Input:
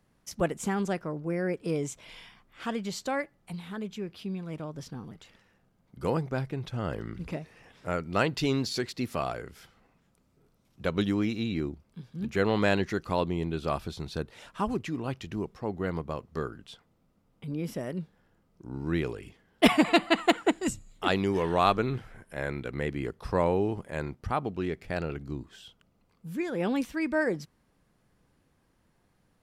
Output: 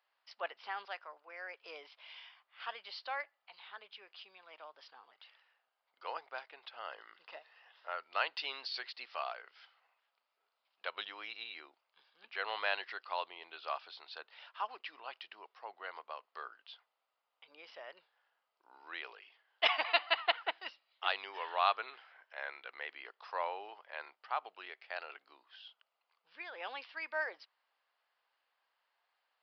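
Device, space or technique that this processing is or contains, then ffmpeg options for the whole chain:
musical greeting card: -filter_complex "[0:a]asettb=1/sr,asplit=3[s0][s1][s2];[s0]atrim=end=0.854[s3];[s1]atrim=start=0.85:end=1.64,asetpts=PTS-STARTPTS,afade=t=in:d=0.004:c=qsin,afade=t=out:st=0.786:d=0.004:c=qsin,highpass=f=570:p=1[s4];[s2]atrim=start=1.636[s5];[s3][s4]acrossfade=d=0.004:c1=hsin:c2=qsin[s6];[s6][s5]acrossfade=d=0.004:c1=qsin:c2=hsin,asettb=1/sr,asplit=3[s7][s8][s9];[s7]atrim=end=6.944[s10];[s8]atrim=start=6.94:end=8.04,asetpts=PTS-STARTPTS,afade=t=in:d=0.004:c=qsin,afade=t=out:st=1.096:d=0.004:c=qsin,bandreject=f=2300:w=7.1[s11];[s9]atrim=start=8.036[s12];[s10][s11]acrossfade=d=0.004:c1=hsin:c2=qsin[s13];[s13][s12]acrossfade=d=0.004:c1=qsin:c2=hsin,aresample=11025,aresample=44100,highpass=f=730:w=0.5412,highpass=f=730:w=1.3066,equalizer=f=2900:t=o:w=0.26:g=4.5,volume=0.562"

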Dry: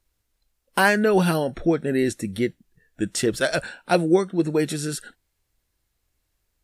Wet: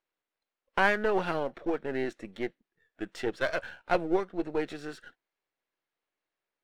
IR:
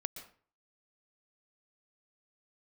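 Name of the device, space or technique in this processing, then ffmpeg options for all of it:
crystal radio: -af "highpass=380,lowpass=2700,aeval=exprs='if(lt(val(0),0),0.447*val(0),val(0))':c=same,volume=0.668"

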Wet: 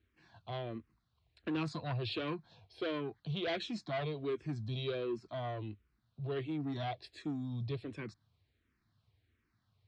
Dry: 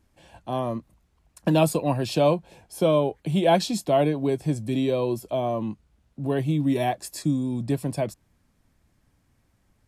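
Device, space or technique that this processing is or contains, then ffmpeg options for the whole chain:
barber-pole phaser into a guitar amplifier: -filter_complex "[0:a]asplit=2[s0][s1];[s1]afreqshift=-1.4[s2];[s0][s2]amix=inputs=2:normalize=1,asoftclip=type=tanh:threshold=0.075,highpass=77,equalizer=f=100:t=q:w=4:g=5,equalizer=f=180:t=q:w=4:g=-10,equalizer=f=270:t=q:w=4:g=-6,equalizer=f=560:t=q:w=4:g=-10,equalizer=f=850:t=q:w=4:g=-9,equalizer=f=4000:t=q:w=4:g=6,lowpass=f=4500:w=0.5412,lowpass=f=4500:w=1.3066,volume=0.596"

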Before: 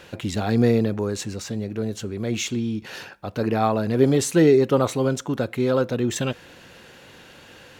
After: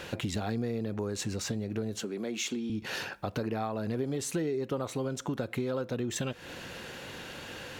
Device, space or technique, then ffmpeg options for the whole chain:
serial compression, peaks first: -filter_complex "[0:a]acompressor=threshold=0.0355:ratio=6,acompressor=threshold=0.00891:ratio=1.5,asettb=1/sr,asplit=3[s0][s1][s2];[s0]atrim=end=2.004[s3];[s1]atrim=start=2:end=2.7,asetpts=PTS-STARTPTS,afade=t=in:d=0.004:c=qsin,afade=t=out:st=0.696:d=0.004:c=qsin,highpass=f=200:w=0.5412,highpass=f=200:w=1.3066[s4];[s2]atrim=start=2.696[s5];[s3][s4]acrossfade=d=0.004:c1=hsin:c2=qsin[s6];[s6][s5]acrossfade=d=0.004:c1=qsin:c2=hsin,volume=1.58"

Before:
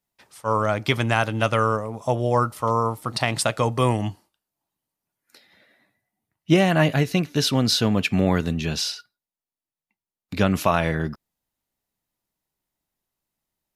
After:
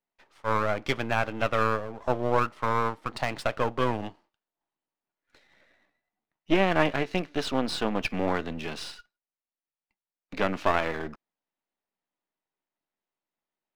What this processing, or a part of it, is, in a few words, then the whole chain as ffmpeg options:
crystal radio: -af "highpass=270,lowpass=2800,aeval=exprs='if(lt(val(0),0),0.251*val(0),val(0))':c=same"

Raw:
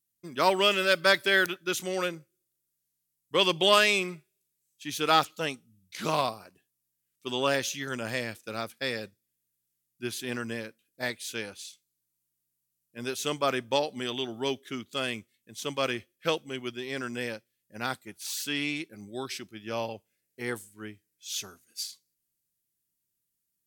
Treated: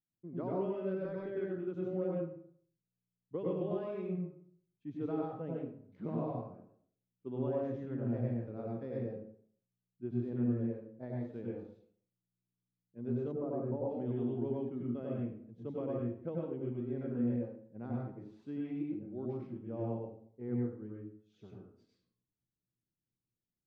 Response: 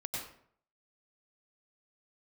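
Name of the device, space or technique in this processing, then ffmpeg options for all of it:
television next door: -filter_complex "[0:a]acompressor=threshold=0.0501:ratio=5,lowpass=400[s0];[1:a]atrim=start_sample=2205[s1];[s0][s1]afir=irnorm=-1:irlink=0,asplit=3[s2][s3][s4];[s2]afade=t=out:st=13.31:d=0.02[s5];[s3]lowpass=1200,afade=t=in:st=13.31:d=0.02,afade=t=out:st=13.89:d=0.02[s6];[s4]afade=t=in:st=13.89:d=0.02[s7];[s5][s6][s7]amix=inputs=3:normalize=0"

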